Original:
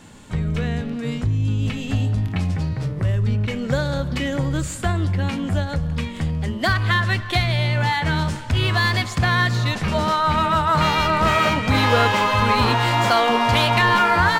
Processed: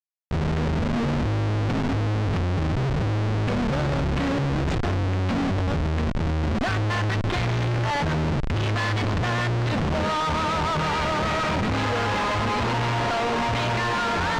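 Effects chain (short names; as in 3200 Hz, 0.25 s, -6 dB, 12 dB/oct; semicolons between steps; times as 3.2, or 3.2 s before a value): in parallel at -0.5 dB: limiter -15.5 dBFS, peak gain reduction 10.5 dB; on the sum: Schmitt trigger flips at -21.5 dBFS; air absorption 130 m; gain -7 dB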